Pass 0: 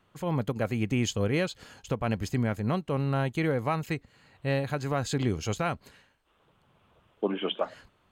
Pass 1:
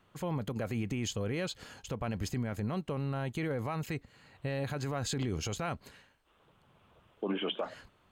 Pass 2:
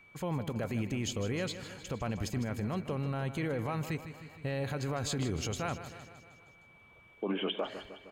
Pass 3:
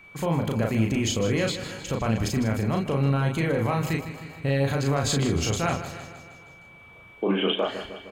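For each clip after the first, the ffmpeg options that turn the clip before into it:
ffmpeg -i in.wav -af "alimiter=level_in=1dB:limit=-24dB:level=0:latency=1:release=29,volume=-1dB" out.wav
ffmpeg -i in.wav -filter_complex "[0:a]aeval=exprs='val(0)+0.00141*sin(2*PI*2300*n/s)':channel_layout=same,asplit=2[link_01][link_02];[link_02]aecho=0:1:155|310|465|620|775|930|1085:0.251|0.151|0.0904|0.0543|0.0326|0.0195|0.0117[link_03];[link_01][link_03]amix=inputs=2:normalize=0" out.wav
ffmpeg -i in.wav -filter_complex "[0:a]asplit=2[link_01][link_02];[link_02]adelay=36,volume=-3dB[link_03];[link_01][link_03]amix=inputs=2:normalize=0,volume=8dB" out.wav

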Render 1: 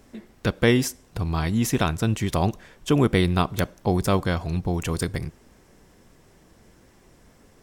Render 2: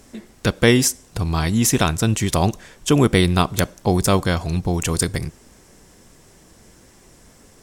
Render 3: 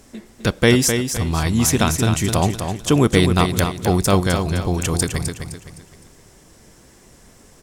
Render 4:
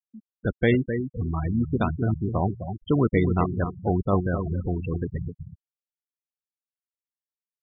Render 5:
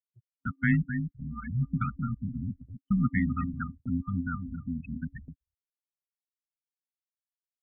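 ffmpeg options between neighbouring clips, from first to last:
ffmpeg -i in.wav -af "equalizer=frequency=8000:width_type=o:width=1.6:gain=8.5,volume=4dB" out.wav
ffmpeg -i in.wav -af "aecho=1:1:257|514|771|1028:0.447|0.161|0.0579|0.0208" out.wav
ffmpeg -i in.wav -af "lowpass=3200,afftfilt=real='re*gte(hypot(re,im),0.2)':imag='im*gte(hypot(re,im),0.2)':win_size=1024:overlap=0.75,volume=-6dB" out.wav
ffmpeg -i in.wav -af "afftfilt=real='re*(1-between(b*sr/4096,370,1300))':imag='im*(1-between(b*sr/4096,370,1300))':win_size=4096:overlap=0.75,highpass=frequency=230:width_type=q:width=0.5412,highpass=frequency=230:width_type=q:width=1.307,lowpass=frequency=2300:width_type=q:width=0.5176,lowpass=frequency=2300:width_type=q:width=0.7071,lowpass=frequency=2300:width_type=q:width=1.932,afreqshift=-100,agate=range=-35dB:threshold=-44dB:ratio=16:detection=peak" out.wav

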